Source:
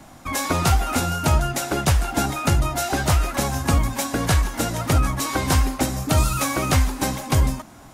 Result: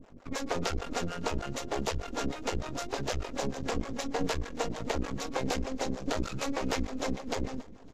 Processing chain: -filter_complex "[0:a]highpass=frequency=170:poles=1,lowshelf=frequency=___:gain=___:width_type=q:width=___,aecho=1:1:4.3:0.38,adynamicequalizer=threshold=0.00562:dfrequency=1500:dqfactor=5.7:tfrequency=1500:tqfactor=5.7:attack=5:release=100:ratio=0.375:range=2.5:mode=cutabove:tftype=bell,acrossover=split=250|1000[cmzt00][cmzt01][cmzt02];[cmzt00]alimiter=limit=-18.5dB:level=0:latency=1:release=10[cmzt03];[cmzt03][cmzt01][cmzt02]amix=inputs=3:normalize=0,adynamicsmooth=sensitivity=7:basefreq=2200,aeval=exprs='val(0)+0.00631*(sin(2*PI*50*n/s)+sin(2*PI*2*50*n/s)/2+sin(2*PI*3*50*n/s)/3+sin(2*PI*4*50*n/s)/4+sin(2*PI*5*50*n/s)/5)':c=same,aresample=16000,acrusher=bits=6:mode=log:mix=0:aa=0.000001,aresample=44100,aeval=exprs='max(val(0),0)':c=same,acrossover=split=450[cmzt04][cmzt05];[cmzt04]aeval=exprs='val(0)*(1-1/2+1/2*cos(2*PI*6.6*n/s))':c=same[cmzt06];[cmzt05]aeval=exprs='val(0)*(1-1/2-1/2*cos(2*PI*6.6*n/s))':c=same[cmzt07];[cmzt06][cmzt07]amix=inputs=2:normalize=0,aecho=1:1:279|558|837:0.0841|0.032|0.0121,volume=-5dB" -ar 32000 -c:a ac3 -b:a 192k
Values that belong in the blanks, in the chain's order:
610, 7.5, 3